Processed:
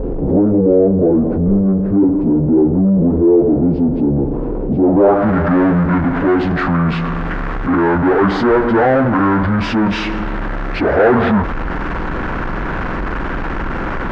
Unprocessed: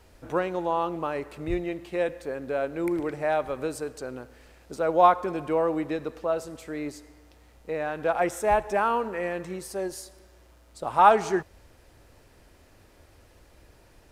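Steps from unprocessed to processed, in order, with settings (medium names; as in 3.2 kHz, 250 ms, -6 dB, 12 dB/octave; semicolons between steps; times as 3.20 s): frequency-domain pitch shifter -10 st; power-law waveshaper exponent 0.5; low-pass sweep 450 Hz -> 1.6 kHz, 4.76–5.29 s; level flattener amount 50%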